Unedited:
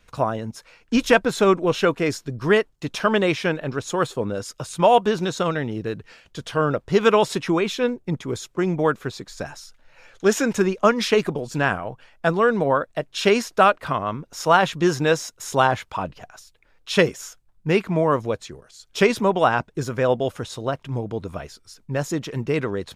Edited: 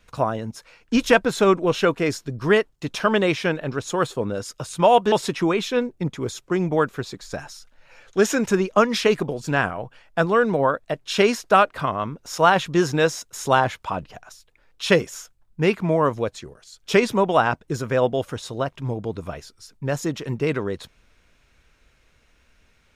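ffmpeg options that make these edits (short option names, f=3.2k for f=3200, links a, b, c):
-filter_complex "[0:a]asplit=2[a][b];[a]atrim=end=5.122[c];[b]atrim=start=7.188[d];[c][d]acrossfade=d=0.004:c1=hsin:c2=hsin"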